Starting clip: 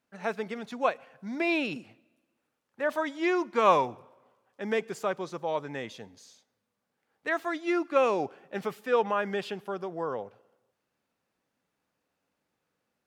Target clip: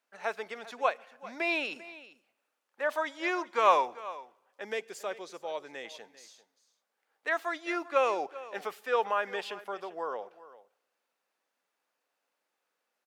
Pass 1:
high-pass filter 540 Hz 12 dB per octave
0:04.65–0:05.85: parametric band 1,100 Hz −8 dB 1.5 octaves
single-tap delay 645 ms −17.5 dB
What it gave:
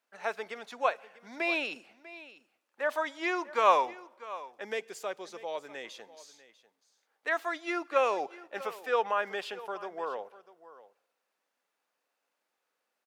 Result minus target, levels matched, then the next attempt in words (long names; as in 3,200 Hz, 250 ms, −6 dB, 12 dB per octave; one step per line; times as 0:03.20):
echo 251 ms late
high-pass filter 540 Hz 12 dB per octave
0:04.65–0:05.85: parametric band 1,100 Hz −8 dB 1.5 octaves
single-tap delay 394 ms −17.5 dB